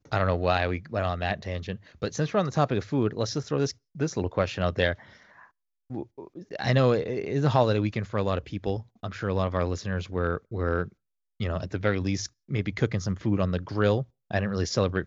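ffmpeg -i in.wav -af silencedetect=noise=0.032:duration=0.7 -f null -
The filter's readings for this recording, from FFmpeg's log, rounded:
silence_start: 4.93
silence_end: 5.91 | silence_duration: 0.98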